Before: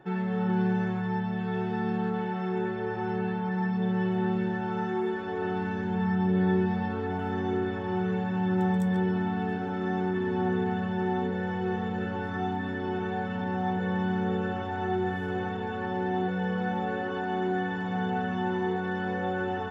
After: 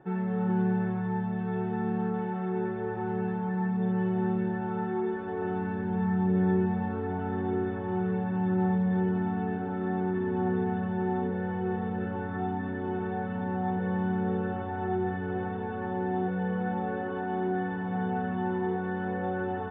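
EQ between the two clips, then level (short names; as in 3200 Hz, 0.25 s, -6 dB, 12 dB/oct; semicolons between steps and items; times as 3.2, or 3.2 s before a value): air absorption 300 m; high shelf 3600 Hz -11.5 dB; 0.0 dB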